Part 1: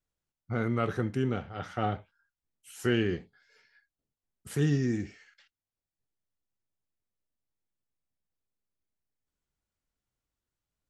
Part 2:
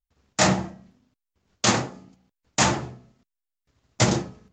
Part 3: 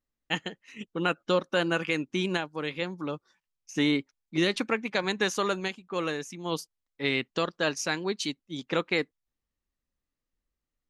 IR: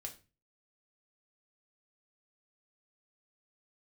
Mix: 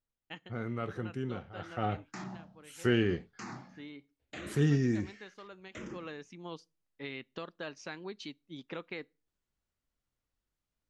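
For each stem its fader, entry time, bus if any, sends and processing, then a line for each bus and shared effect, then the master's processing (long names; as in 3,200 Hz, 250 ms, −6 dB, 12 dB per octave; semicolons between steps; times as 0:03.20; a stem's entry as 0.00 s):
0:01.47 −7.5 dB → 0:02.04 −0.5 dB, 0.00 s, no bus, no send, no processing
−11.0 dB, 1.75 s, bus A, no send, brickwall limiter −16 dBFS, peak gain reduction 10 dB; frequency shifter mixed with the dry sound −0.77 Hz
−8.0 dB, 0.00 s, bus A, send −23.5 dB, automatic ducking −16 dB, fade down 0.85 s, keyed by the first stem
bus A: 0.0 dB, low-pass filter 4,600 Hz 12 dB per octave; downward compressor 2.5 to 1, threshold −41 dBFS, peak gain reduction 8 dB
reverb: on, RT60 0.30 s, pre-delay 3 ms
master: high-shelf EQ 11,000 Hz −11 dB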